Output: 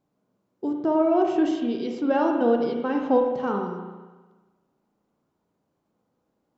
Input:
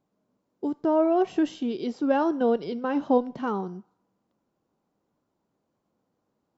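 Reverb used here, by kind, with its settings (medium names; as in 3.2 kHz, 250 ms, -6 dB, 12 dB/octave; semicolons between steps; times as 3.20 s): spring tank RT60 1.3 s, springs 34/54 ms, chirp 80 ms, DRR 2 dB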